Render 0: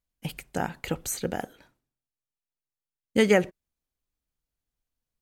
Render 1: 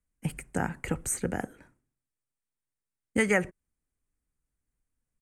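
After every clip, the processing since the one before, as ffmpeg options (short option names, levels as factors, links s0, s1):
-filter_complex "[0:a]firequalizer=gain_entry='entry(270,0);entry(660,-7);entry(1300,-4);entry(2000,-3);entry(3600,-19);entry(8800,1);entry(14000,-17)':delay=0.05:min_phase=1,acrossover=split=120|640|4600[s0][s1][s2][s3];[s1]acompressor=threshold=0.0224:ratio=6[s4];[s0][s4][s2][s3]amix=inputs=4:normalize=0,volume=1.68"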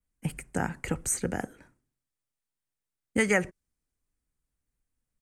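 -af "adynamicequalizer=threshold=0.00316:dfrequency=5300:dqfactor=1.3:tfrequency=5300:tqfactor=1.3:attack=5:release=100:ratio=0.375:range=3:mode=boostabove:tftype=bell"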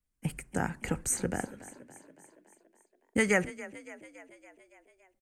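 -filter_complex "[0:a]asplit=7[s0][s1][s2][s3][s4][s5][s6];[s1]adelay=282,afreqshift=31,volume=0.141[s7];[s2]adelay=564,afreqshift=62,volume=0.0861[s8];[s3]adelay=846,afreqshift=93,volume=0.0525[s9];[s4]adelay=1128,afreqshift=124,volume=0.032[s10];[s5]adelay=1410,afreqshift=155,volume=0.0195[s11];[s6]adelay=1692,afreqshift=186,volume=0.0119[s12];[s0][s7][s8][s9][s10][s11][s12]amix=inputs=7:normalize=0,volume=0.841"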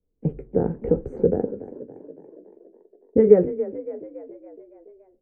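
-filter_complex "[0:a]asplit=2[s0][s1];[s1]alimiter=level_in=1.06:limit=0.0631:level=0:latency=1:release=25,volume=0.944,volume=0.75[s2];[s0][s2]amix=inputs=2:normalize=0,lowpass=f=450:t=q:w=4.9,flanger=delay=9.6:depth=9.4:regen=-48:speed=0.67:shape=triangular,volume=2.24"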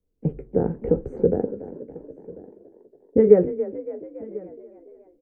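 -af "aecho=1:1:1043:0.0891"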